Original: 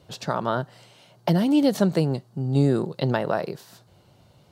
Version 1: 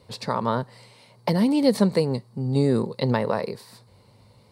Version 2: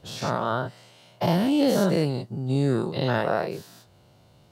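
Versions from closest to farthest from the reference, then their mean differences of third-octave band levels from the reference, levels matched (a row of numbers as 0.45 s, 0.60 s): 1, 2; 2.5 dB, 4.5 dB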